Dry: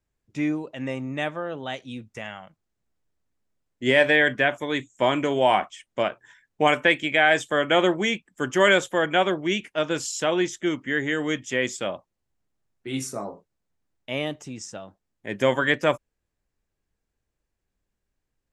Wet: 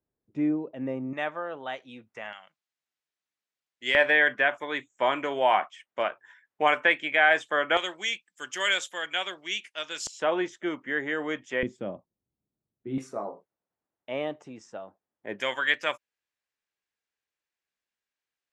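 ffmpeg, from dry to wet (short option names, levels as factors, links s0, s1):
-af "asetnsamples=n=441:p=0,asendcmd='1.13 bandpass f 1100;2.33 bandpass f 3200;3.95 bandpass f 1300;7.77 bandpass f 4600;10.07 bandpass f 920;11.63 bandpass f 210;12.98 bandpass f 730;15.4 bandpass f 2800',bandpass=f=360:t=q:w=0.73:csg=0"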